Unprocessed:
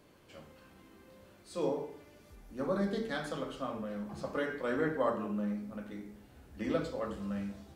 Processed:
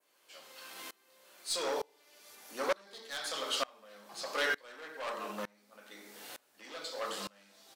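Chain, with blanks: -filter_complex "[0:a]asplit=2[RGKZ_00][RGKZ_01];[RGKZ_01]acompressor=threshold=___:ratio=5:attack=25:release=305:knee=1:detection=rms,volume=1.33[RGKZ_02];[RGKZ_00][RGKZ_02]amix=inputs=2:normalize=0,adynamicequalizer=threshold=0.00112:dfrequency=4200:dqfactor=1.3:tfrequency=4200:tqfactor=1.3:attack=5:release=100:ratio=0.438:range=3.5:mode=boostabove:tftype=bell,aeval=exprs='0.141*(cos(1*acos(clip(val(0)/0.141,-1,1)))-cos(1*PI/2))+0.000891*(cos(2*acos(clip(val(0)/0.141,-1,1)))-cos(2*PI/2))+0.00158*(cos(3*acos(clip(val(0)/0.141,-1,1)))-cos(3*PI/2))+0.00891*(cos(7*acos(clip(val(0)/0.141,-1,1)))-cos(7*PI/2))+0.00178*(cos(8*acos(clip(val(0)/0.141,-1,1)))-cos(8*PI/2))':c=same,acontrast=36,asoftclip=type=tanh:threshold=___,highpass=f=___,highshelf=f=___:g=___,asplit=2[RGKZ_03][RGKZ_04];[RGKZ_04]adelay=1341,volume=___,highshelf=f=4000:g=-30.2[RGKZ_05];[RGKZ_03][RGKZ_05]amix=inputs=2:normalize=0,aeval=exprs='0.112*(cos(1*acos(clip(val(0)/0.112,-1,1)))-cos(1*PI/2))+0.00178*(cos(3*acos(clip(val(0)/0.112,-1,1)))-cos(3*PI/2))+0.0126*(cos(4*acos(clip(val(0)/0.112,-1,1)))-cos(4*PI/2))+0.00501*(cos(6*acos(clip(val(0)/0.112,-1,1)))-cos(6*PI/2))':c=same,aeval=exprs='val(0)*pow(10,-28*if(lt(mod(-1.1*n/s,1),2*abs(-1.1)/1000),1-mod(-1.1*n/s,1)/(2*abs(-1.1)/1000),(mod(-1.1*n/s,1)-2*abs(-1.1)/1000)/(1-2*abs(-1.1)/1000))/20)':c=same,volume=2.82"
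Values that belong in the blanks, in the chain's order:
0.00398, 0.0316, 610, 3200, 10.5, 0.0447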